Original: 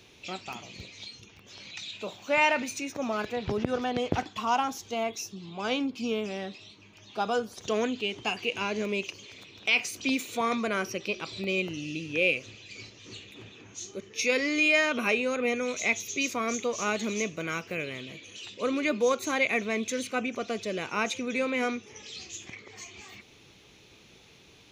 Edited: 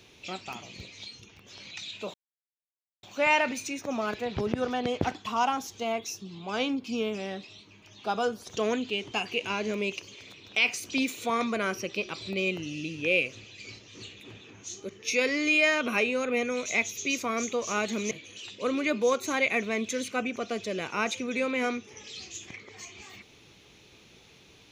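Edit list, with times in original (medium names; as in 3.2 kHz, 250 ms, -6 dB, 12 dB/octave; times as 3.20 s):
2.14 s: insert silence 0.89 s
17.22–18.10 s: delete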